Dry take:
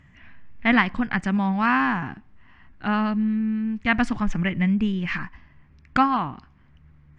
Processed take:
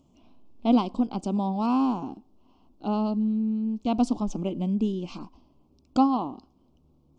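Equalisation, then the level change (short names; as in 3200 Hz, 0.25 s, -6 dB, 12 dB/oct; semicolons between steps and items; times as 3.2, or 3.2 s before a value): Butterworth band-stop 1800 Hz, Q 0.53; resonant low shelf 200 Hz -12 dB, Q 1.5; +1.5 dB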